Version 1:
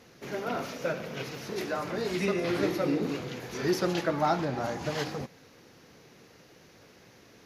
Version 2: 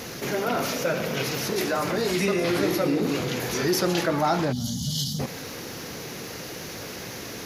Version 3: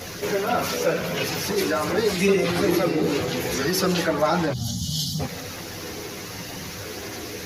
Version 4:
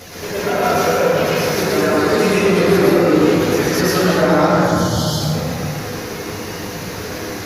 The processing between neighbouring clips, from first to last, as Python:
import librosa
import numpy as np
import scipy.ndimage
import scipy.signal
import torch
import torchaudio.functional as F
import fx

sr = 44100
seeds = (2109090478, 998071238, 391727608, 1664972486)

y1 = fx.spec_box(x, sr, start_s=4.52, length_s=0.67, low_hz=260.0, high_hz=2900.0, gain_db=-28)
y1 = fx.high_shelf(y1, sr, hz=6800.0, db=11.0)
y1 = fx.env_flatten(y1, sr, amount_pct=50)
y1 = y1 * 10.0 ** (2.0 / 20.0)
y2 = fx.chorus_voices(y1, sr, voices=4, hz=0.44, base_ms=11, depth_ms=1.5, mix_pct=55)
y2 = y2 * 10.0 ** (5.0 / 20.0)
y3 = fx.rev_plate(y2, sr, seeds[0], rt60_s=2.9, hf_ratio=0.3, predelay_ms=95, drr_db=-9.0)
y3 = y3 * 10.0 ** (-1.5 / 20.0)